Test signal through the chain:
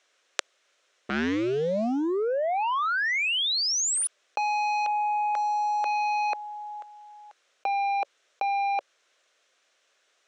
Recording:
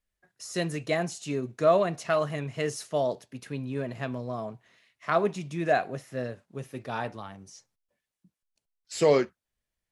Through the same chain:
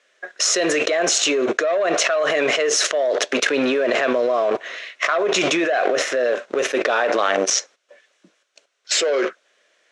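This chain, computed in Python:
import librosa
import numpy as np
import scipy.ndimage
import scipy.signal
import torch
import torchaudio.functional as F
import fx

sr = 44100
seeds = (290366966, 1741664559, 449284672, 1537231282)

y = fx.leveller(x, sr, passes=2)
y = fx.cabinet(y, sr, low_hz=390.0, low_slope=24, high_hz=6300.0, hz=(570.0, 880.0, 1500.0, 4700.0), db=(4, -9, 3, -7))
y = fx.env_flatten(y, sr, amount_pct=100)
y = y * librosa.db_to_amplitude(-6.0)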